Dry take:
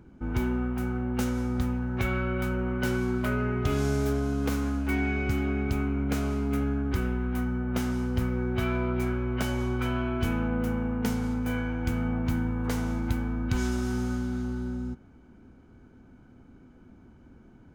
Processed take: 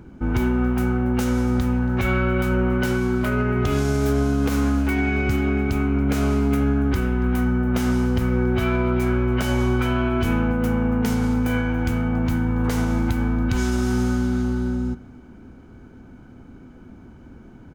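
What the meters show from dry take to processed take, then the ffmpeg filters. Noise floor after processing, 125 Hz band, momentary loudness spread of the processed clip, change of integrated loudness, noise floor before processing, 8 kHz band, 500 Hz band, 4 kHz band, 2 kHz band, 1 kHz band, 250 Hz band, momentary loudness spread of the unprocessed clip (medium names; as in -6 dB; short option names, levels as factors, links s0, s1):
-45 dBFS, +7.0 dB, 2 LU, +7.5 dB, -54 dBFS, +6.0 dB, +7.5 dB, +6.5 dB, +7.0 dB, +7.5 dB, +7.5 dB, 3 LU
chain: -filter_complex "[0:a]alimiter=limit=0.0891:level=0:latency=1:release=104,asplit=2[s0][s1];[s1]aecho=0:1:280:0.0708[s2];[s0][s2]amix=inputs=2:normalize=0,volume=2.82"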